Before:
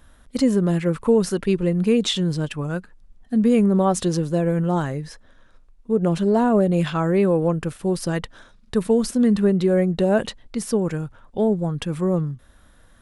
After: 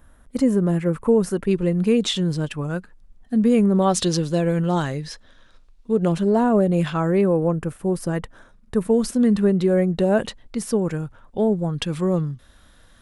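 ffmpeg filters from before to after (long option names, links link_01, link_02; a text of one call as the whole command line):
ffmpeg -i in.wav -af "asetnsamples=nb_out_samples=441:pad=0,asendcmd='1.51 equalizer g -1;3.82 equalizer g 8.5;6.12 equalizer g -2.5;7.21 equalizer g -10;8.94 equalizer g -1.5;11.73 equalizer g 6.5',equalizer=frequency=4100:width_type=o:width=1.6:gain=-9" out.wav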